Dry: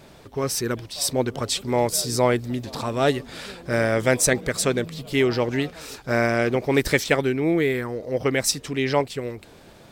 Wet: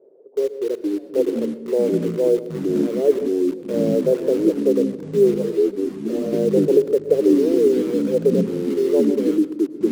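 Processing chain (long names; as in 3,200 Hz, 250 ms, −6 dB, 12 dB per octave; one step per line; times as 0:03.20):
0:01.93–0:02.65: transient designer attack −3 dB, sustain +6 dB
flat-topped band-pass 440 Hz, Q 3.1
in parallel at −9.5 dB: bit-depth reduction 6 bits, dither none
on the sum: delay with pitch and tempo change per echo 345 ms, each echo −5 semitones, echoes 3
on a send at −14 dB: convolution reverb RT60 0.70 s, pre-delay 103 ms
0:05.34–0:06.33: on the sum: string-ensemble chorus
level +5.5 dB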